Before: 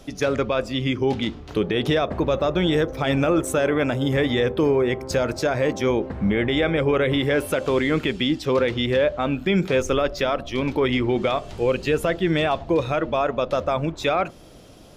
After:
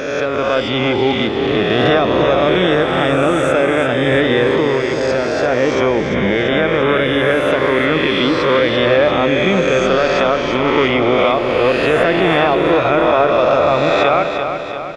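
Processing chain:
peak hold with a rise ahead of every peak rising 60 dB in 1.76 s
spectral tilt +2.5 dB per octave
automatic gain control
head-to-tape spacing loss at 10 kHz 29 dB
on a send: repeating echo 343 ms, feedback 56%, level −7.5 dB
on the sum: boost into a limiter +4.5 dB
level −1 dB

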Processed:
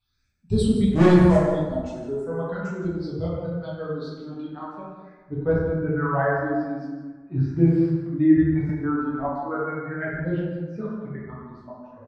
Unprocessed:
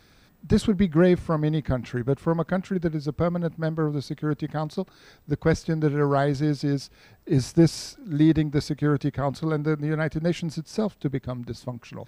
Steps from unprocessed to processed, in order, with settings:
spectral dynamics exaggerated over time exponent 1.5
all-pass phaser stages 6, 0.41 Hz, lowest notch 110–1,900 Hz
0:00.91–0:01.43: leveller curve on the samples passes 3
0:07.56–0:08.07: bit-depth reduction 8 bits, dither none
low-pass filter sweep 8,000 Hz → 1,600 Hz, 0:02.46–0:05.57
on a send: single-tap delay 165 ms −12.5 dB
on the sum: dense smooth reverb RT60 1.4 s, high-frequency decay 0.45×, DRR −7 dB
0:08.69–0:09.29: multiband upward and downward compressor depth 70%
level −5 dB

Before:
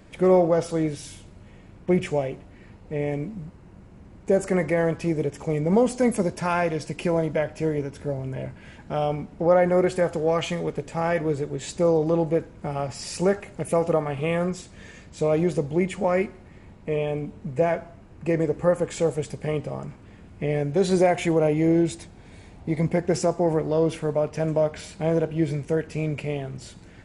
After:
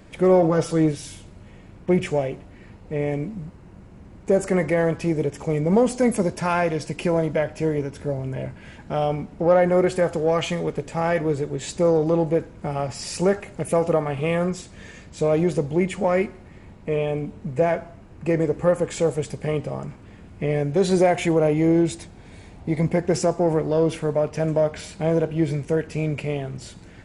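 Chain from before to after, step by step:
0:00.42–0:00.92: comb filter 6.7 ms, depth 68%
in parallel at −9.5 dB: soft clipping −19 dBFS, distortion −12 dB

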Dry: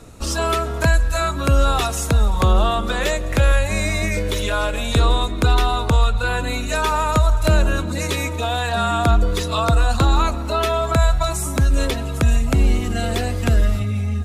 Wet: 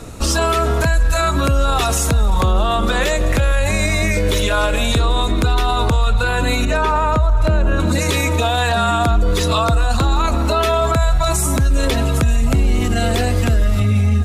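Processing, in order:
0:06.65–0:07.80: low-pass filter 1,600 Hz 6 dB per octave
boost into a limiter +16 dB
level −7 dB

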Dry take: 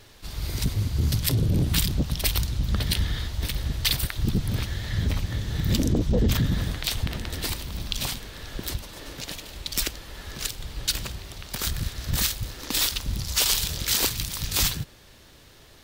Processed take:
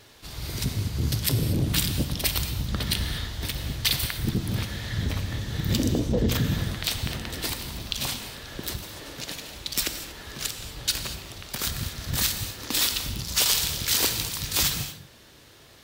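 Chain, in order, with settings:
high-pass filter 94 Hz 6 dB per octave
reverb whose tail is shaped and stops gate 260 ms flat, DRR 7 dB

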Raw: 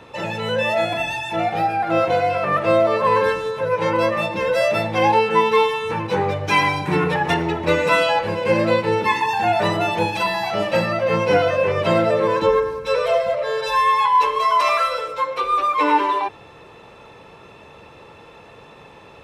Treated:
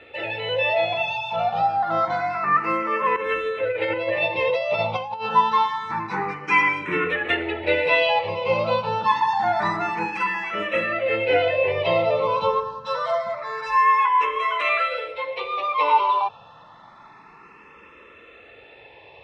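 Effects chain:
low-pass filter 2,600 Hz 12 dB per octave
tilt shelving filter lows −6.5 dB, about 770 Hz
notch filter 1,600 Hz, Q 10
0:03.16–0:05.29: compressor whose output falls as the input rises −21 dBFS, ratio −0.5
frequency shifter mixed with the dry sound +0.27 Hz

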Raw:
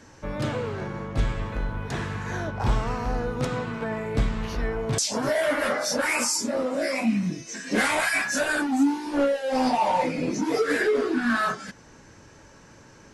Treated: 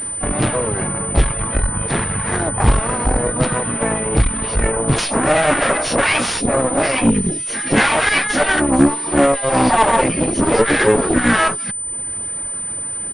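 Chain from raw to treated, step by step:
reverb reduction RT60 0.86 s
in parallel at −1 dB: downward compressor 8 to 1, threshold −38 dBFS, peak gain reduction 19.5 dB
on the sum: pitch-shifted copies added −12 semitones −12 dB, −5 semitones −11 dB, +4 semitones −6 dB
harmonic generator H 8 −18 dB, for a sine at −6.5 dBFS
switching amplifier with a slow clock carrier 9,000 Hz
level +6.5 dB

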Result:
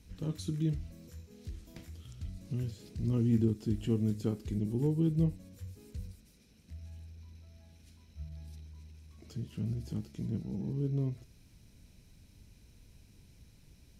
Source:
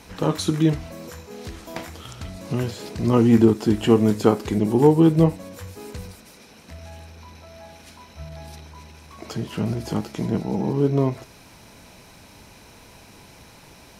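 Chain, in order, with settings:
guitar amp tone stack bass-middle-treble 10-0-1
level +4 dB

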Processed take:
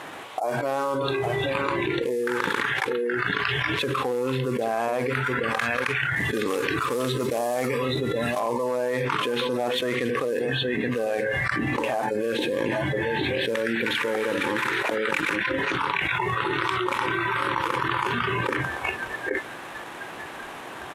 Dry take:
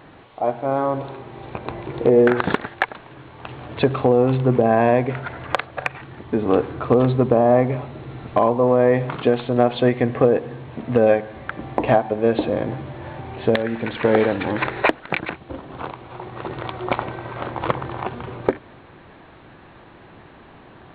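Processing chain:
variable-slope delta modulation 64 kbit/s
high-pass filter 790 Hz 6 dB per octave
single-tap delay 823 ms −13 dB
noise reduction from a noise print of the clip's start 19 dB
0:06.16–0:08.40: high-shelf EQ 3,100 Hz +10 dB
envelope flattener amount 100%
level −9 dB

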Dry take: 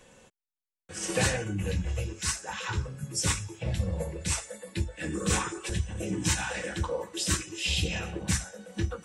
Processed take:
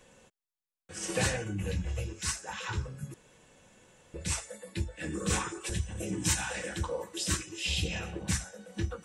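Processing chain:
0:03.14–0:04.14: fill with room tone
0:05.61–0:07.18: high-shelf EQ 8,900 Hz +9 dB
level −3 dB

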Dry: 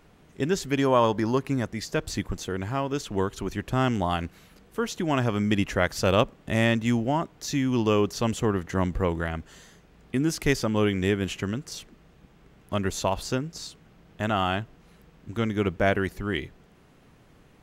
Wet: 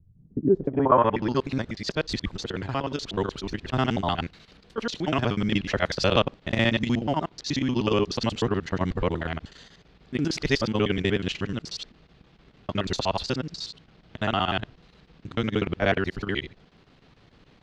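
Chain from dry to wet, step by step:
reversed piece by piece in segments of 61 ms
square-wave tremolo 6.7 Hz, depth 65%, duty 85%
low-pass filter sweep 110 Hz → 4,300 Hz, 0:00.12–0:01.34

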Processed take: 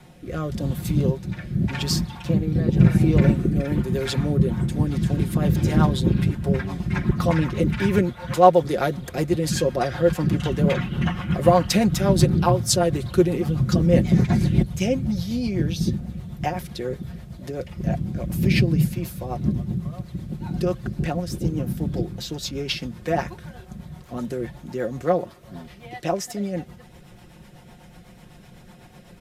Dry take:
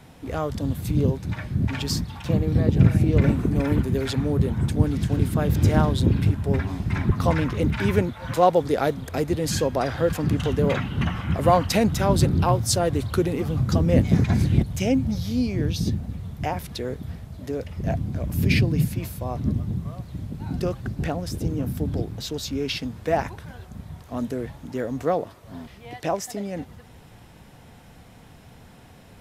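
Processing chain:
rotating-speaker cabinet horn 0.9 Hz, later 8 Hz, at 0:04.14
comb filter 5.6 ms, depth 58%
level +2 dB

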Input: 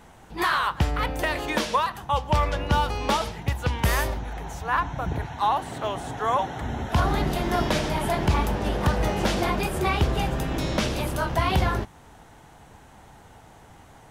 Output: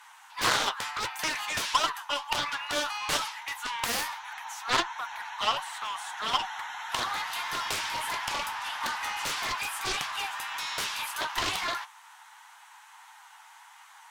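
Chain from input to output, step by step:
elliptic high-pass filter 920 Hz, stop band 50 dB
harmonic generator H 3 −14 dB, 6 −28 dB, 7 −12 dB, 8 −33 dB, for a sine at −13 dBFS
flanger 1.6 Hz, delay 6.4 ms, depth 4.4 ms, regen +54%
highs frequency-modulated by the lows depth 0.32 ms
level +5 dB

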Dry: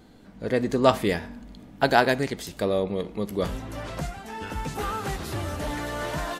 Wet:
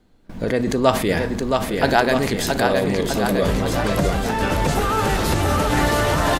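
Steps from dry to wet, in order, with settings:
background noise brown −49 dBFS
in parallel at +2 dB: compressor whose output falls as the input rises −31 dBFS, ratio −0.5
on the sum: bouncing-ball delay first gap 670 ms, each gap 0.9×, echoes 5
noise gate with hold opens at −26 dBFS
level +2 dB

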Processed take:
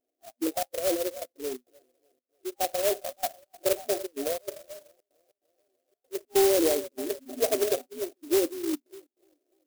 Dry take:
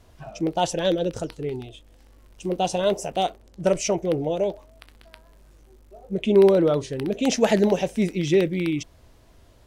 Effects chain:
wavefolder on the positive side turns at −14 dBFS
on a send: feedback echo with a high-pass in the loop 296 ms, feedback 68%, high-pass 310 Hz, level −13 dB
on the sum: gate pattern "xxx.xx.xx" 144 BPM −24 dB
brick-wall band-pass 240–800 Hz
noise reduction from a noise print of the clip's start 19 dB
converter with an unsteady clock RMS 0.13 ms
level −3.5 dB

